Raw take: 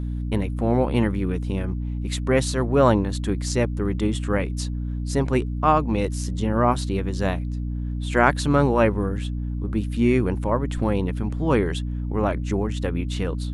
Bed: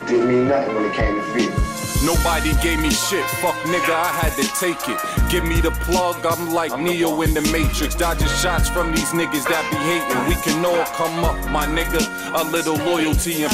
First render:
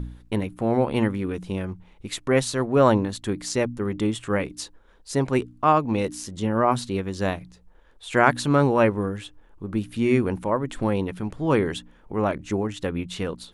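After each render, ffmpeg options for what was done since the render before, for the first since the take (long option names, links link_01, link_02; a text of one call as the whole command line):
ffmpeg -i in.wav -af "bandreject=frequency=60:width_type=h:width=4,bandreject=frequency=120:width_type=h:width=4,bandreject=frequency=180:width_type=h:width=4,bandreject=frequency=240:width_type=h:width=4,bandreject=frequency=300:width_type=h:width=4" out.wav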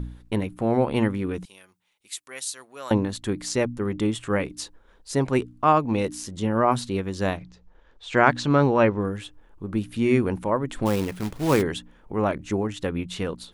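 ffmpeg -i in.wav -filter_complex "[0:a]asettb=1/sr,asplit=3[link_01][link_02][link_03];[link_01]atrim=end=1.454[link_04];[link_02]atrim=start=1.45:end=2.91,asetpts=PTS-STARTPTS,afade=type=in:duration=0.004:curve=qsin,afade=type=out:start_time=1.456:duration=0.004:curve=qsin,aderivative[link_05];[link_03]atrim=start=2.906[link_06];[link_04][link_05]acrossfade=duration=0.004:curve1=hsin:curve2=qsin[link_07];[link_07][link_06]acrossfade=duration=0.004:curve1=qsin:curve2=hsin,asettb=1/sr,asplit=3[link_08][link_09][link_10];[link_08]atrim=end=7.374[link_11];[link_09]atrim=start=7.37:end=9.05,asetpts=PTS-STARTPTS,afade=type=in:duration=0.004:curve=qsin,afade=type=out:start_time=1.676:duration=0.004:curve=qsin,lowpass=frequency=6600:width=0.5412,lowpass=frequency=6600:width=1.3066[link_12];[link_10]atrim=start=9.046[link_13];[link_11][link_12]acrossfade=duration=0.004:curve1=hsin:curve2=qsin[link_14];[link_14][link_13]acrossfade=duration=0.004:curve1=qsin:curve2=hsin,asplit=3[link_15][link_16][link_17];[link_15]afade=type=out:start_time=10.85:duration=0.02[link_18];[link_16]acrusher=bits=3:mode=log:mix=0:aa=0.000001,afade=type=in:start_time=10.85:duration=0.02,afade=type=out:start_time=11.61:duration=0.02[link_19];[link_17]afade=type=in:start_time=11.61:duration=0.02[link_20];[link_18][link_19][link_20]amix=inputs=3:normalize=0" out.wav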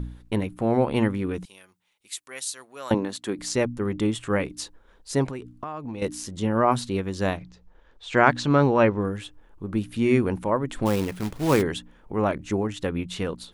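ffmpeg -i in.wav -filter_complex "[0:a]asettb=1/sr,asplit=3[link_01][link_02][link_03];[link_01]atrim=end=2.944[link_04];[link_02]atrim=start=2.94:end=3.39,asetpts=PTS-STARTPTS,afade=type=in:duration=0.004:curve=qsin,afade=type=out:start_time=0.446:duration=0.004:curve=qsin,highpass=240[link_05];[link_03]atrim=start=3.386[link_06];[link_04][link_05]acrossfade=duration=0.004:curve1=hsin:curve2=qsin[link_07];[link_07][link_06]acrossfade=duration=0.004:curve1=qsin:curve2=hsin,asettb=1/sr,asplit=3[link_08][link_09][link_10];[link_08]atrim=end=5.264[link_11];[link_09]atrim=start=5.26:end=6.02,asetpts=PTS-STARTPTS,afade=type=in:duration=0.004:curve=qsin,afade=type=out:start_time=0.756:duration=0.004:curve=qsin,acompressor=threshold=-29dB:ratio=16:attack=3.2:release=140:knee=1:detection=peak[link_12];[link_10]atrim=start=6.016[link_13];[link_11][link_12]acrossfade=duration=0.004:curve1=hsin:curve2=qsin[link_14];[link_14][link_13]acrossfade=duration=0.004:curve1=qsin:curve2=hsin" out.wav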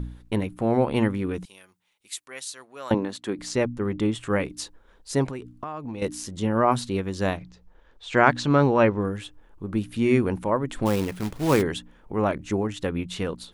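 ffmpeg -i in.wav -filter_complex "[0:a]asettb=1/sr,asplit=3[link_01][link_02][link_03];[link_01]atrim=end=2.254[link_04];[link_02]atrim=start=2.25:end=4.19,asetpts=PTS-STARTPTS,afade=type=in:duration=0.004:curve=qsin,afade=type=out:start_time=1.936:duration=0.004:curve=qsin,highshelf=frequency=6500:gain=-8[link_05];[link_03]atrim=start=4.186[link_06];[link_04][link_05]acrossfade=duration=0.004:curve1=hsin:curve2=qsin[link_07];[link_07][link_06]acrossfade=duration=0.004:curve1=qsin:curve2=hsin" out.wav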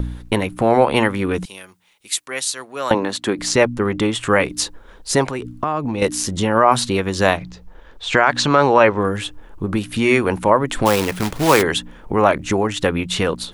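ffmpeg -i in.wav -filter_complex "[0:a]acrossover=split=510|2100[link_01][link_02][link_03];[link_01]acompressor=threshold=-33dB:ratio=5[link_04];[link_04][link_02][link_03]amix=inputs=3:normalize=0,alimiter=level_in=13dB:limit=-1dB:release=50:level=0:latency=1" out.wav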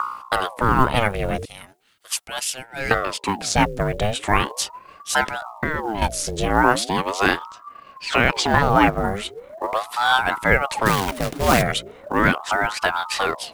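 ffmpeg -i in.wav -af "acrusher=bits=8:mode=log:mix=0:aa=0.000001,aeval=exprs='val(0)*sin(2*PI*710*n/s+710*0.65/0.39*sin(2*PI*0.39*n/s))':channel_layout=same" out.wav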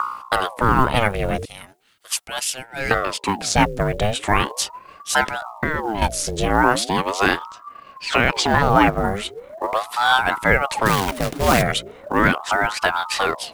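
ffmpeg -i in.wav -af "volume=1.5dB,alimiter=limit=-2dB:level=0:latency=1" out.wav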